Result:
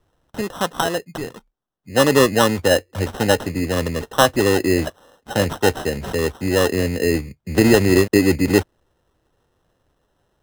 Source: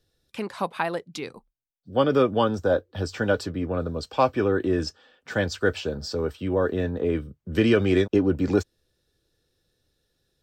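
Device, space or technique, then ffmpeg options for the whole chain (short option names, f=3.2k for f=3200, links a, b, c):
crushed at another speed: -af "asetrate=35280,aresample=44100,acrusher=samples=24:mix=1:aa=0.000001,asetrate=55125,aresample=44100,volume=6dB"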